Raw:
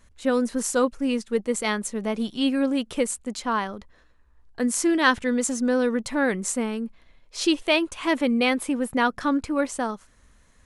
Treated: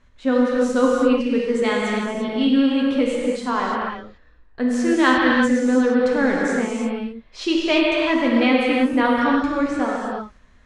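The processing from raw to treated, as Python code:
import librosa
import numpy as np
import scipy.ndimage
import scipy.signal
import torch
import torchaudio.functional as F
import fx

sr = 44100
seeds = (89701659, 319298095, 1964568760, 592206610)

y = scipy.signal.sosfilt(scipy.signal.butter(2, 3800.0, 'lowpass', fs=sr, output='sos'), x)
y = fx.rev_gated(y, sr, seeds[0], gate_ms=370, shape='flat', drr_db=-3.5)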